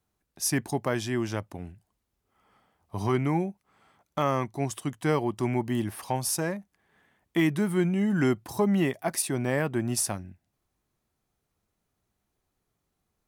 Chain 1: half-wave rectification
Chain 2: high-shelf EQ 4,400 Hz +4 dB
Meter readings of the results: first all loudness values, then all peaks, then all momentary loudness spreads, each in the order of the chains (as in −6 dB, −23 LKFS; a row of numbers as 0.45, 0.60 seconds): −31.5, −27.5 LKFS; −12.0, −10.5 dBFS; 8, 10 LU